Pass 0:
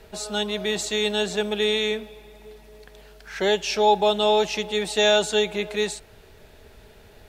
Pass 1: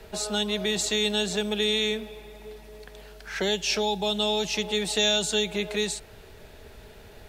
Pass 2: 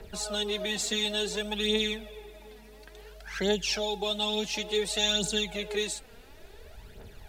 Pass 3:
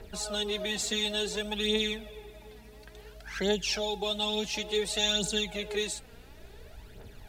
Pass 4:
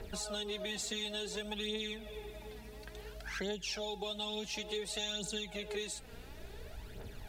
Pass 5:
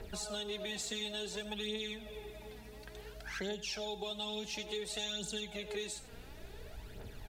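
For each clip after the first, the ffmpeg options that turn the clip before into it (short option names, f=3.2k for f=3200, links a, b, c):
-filter_complex "[0:a]acrossover=split=240|3000[a][b][c];[b]acompressor=threshold=-30dB:ratio=6[d];[a][d][c]amix=inputs=3:normalize=0,volume=2dB"
-af "aphaser=in_gain=1:out_gain=1:delay=4.4:decay=0.6:speed=0.57:type=triangular,volume=-5dB"
-af "aeval=exprs='val(0)+0.002*(sin(2*PI*60*n/s)+sin(2*PI*2*60*n/s)/2+sin(2*PI*3*60*n/s)/3+sin(2*PI*4*60*n/s)/4+sin(2*PI*5*60*n/s)/5)':c=same,volume=-1dB"
-af "acompressor=threshold=-40dB:ratio=3,volume=1dB"
-af "aecho=1:1:90:0.178,volume=-1dB"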